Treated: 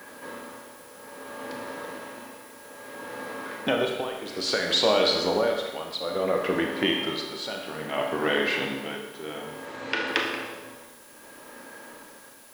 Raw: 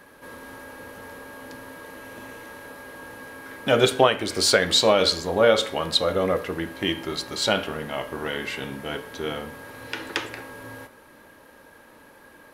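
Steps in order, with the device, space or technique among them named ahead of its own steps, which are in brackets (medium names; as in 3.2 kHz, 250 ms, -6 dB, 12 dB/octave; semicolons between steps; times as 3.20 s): medium wave at night (band-pass 180–4500 Hz; compression, threshold -23 dBFS, peak gain reduction 11.5 dB; tremolo 0.6 Hz, depth 77%; whistle 10 kHz -63 dBFS; white noise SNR 24 dB); 9.65–10.08 s: steep low-pass 8.3 kHz; Schroeder reverb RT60 1.1 s, combs from 26 ms, DRR 2.5 dB; trim +4.5 dB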